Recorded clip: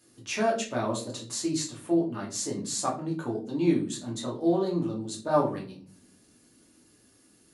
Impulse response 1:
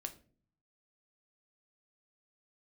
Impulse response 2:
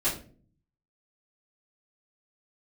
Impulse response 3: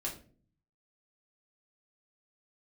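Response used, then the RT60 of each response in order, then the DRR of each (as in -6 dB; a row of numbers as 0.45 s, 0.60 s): 3; 0.45 s, 0.45 s, 0.45 s; 6.0 dB, -12.5 dB, -3.5 dB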